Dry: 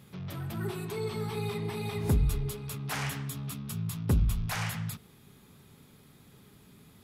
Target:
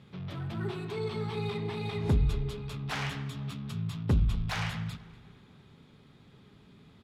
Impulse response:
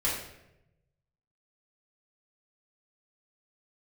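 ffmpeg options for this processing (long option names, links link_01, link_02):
-filter_complex "[0:a]equalizer=frequency=3600:width=1.7:gain=4.5,adynamicsmooth=sensitivity=4.5:basefreq=4100,asplit=2[link_01][link_02];[link_02]adelay=242,lowpass=frequency=4400:poles=1,volume=-19dB,asplit=2[link_03][link_04];[link_04]adelay=242,lowpass=frequency=4400:poles=1,volume=0.51,asplit=2[link_05][link_06];[link_06]adelay=242,lowpass=frequency=4400:poles=1,volume=0.51,asplit=2[link_07][link_08];[link_08]adelay=242,lowpass=frequency=4400:poles=1,volume=0.51[link_09];[link_03][link_05][link_07][link_09]amix=inputs=4:normalize=0[link_10];[link_01][link_10]amix=inputs=2:normalize=0"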